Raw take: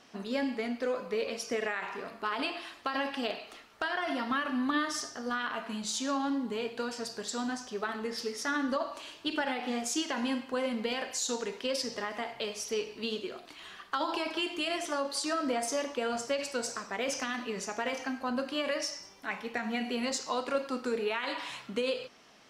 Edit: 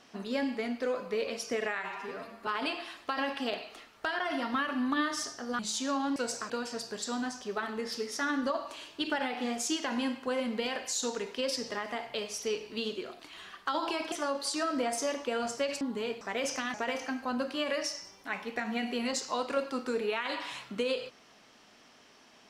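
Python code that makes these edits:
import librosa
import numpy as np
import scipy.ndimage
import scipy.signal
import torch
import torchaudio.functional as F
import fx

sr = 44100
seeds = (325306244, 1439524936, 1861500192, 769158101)

y = fx.edit(x, sr, fx.stretch_span(start_s=1.78, length_s=0.46, factor=1.5),
    fx.cut(start_s=5.36, length_s=0.43),
    fx.swap(start_s=6.36, length_s=0.4, other_s=16.51, other_length_s=0.34),
    fx.cut(start_s=14.38, length_s=0.44),
    fx.cut(start_s=17.38, length_s=0.34), tone=tone)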